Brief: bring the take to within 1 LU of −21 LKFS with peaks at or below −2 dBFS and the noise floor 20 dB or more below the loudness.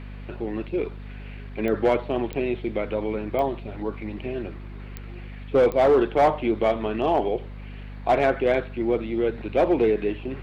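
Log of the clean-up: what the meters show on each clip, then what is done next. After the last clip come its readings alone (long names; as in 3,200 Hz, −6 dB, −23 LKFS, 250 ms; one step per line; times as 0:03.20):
number of clicks 5; mains hum 50 Hz; hum harmonics up to 250 Hz; level of the hum −35 dBFS; integrated loudness −24.5 LKFS; sample peak −12.0 dBFS; target loudness −21.0 LKFS
→ click removal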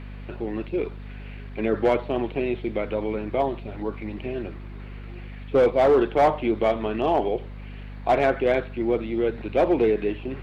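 number of clicks 0; mains hum 50 Hz; hum harmonics up to 250 Hz; level of the hum −35 dBFS
→ mains-hum notches 50/100/150/200/250 Hz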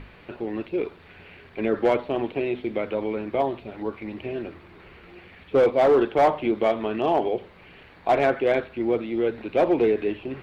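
mains hum none found; integrated loudness −24.5 LKFS; sample peak −11.5 dBFS; target loudness −21.0 LKFS
→ level +3.5 dB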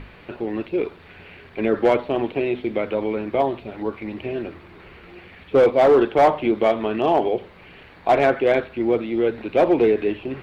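integrated loudness −21.0 LKFS; sample peak −8.0 dBFS; background noise floor −46 dBFS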